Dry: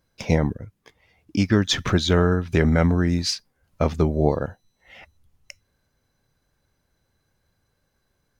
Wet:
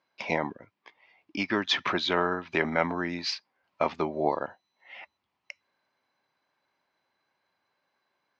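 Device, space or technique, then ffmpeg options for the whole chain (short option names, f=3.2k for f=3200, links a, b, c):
phone earpiece: -af "highpass=440,equalizer=f=470:t=q:w=4:g=-8,equalizer=f=970:t=q:w=4:g=5,equalizer=f=1.5k:t=q:w=4:g=-3,equalizer=f=2.3k:t=q:w=4:g=3,equalizer=f=3.6k:t=q:w=4:g=-3,lowpass=f=4.3k:w=0.5412,lowpass=f=4.3k:w=1.3066"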